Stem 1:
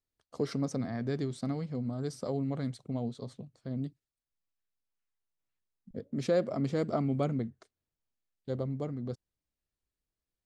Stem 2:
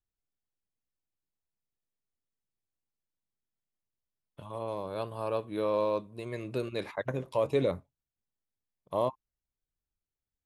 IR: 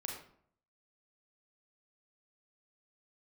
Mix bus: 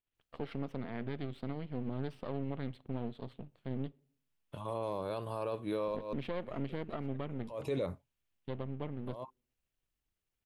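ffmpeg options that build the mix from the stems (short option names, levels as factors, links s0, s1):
-filter_complex "[0:a]aeval=exprs='if(lt(val(0),0),0.251*val(0),val(0))':c=same,highshelf=f=4300:t=q:w=3:g=-13.5,volume=1,asplit=3[s0][s1][s2];[s1]volume=0.075[s3];[1:a]alimiter=level_in=1.41:limit=0.0631:level=0:latency=1:release=55,volume=0.708,adelay=150,volume=1.26[s4];[s2]apad=whole_len=467884[s5];[s4][s5]sidechaincompress=threshold=0.00316:ratio=6:attack=24:release=144[s6];[2:a]atrim=start_sample=2205[s7];[s3][s7]afir=irnorm=-1:irlink=0[s8];[s0][s6][s8]amix=inputs=3:normalize=0,alimiter=level_in=1.26:limit=0.0631:level=0:latency=1:release=453,volume=0.794"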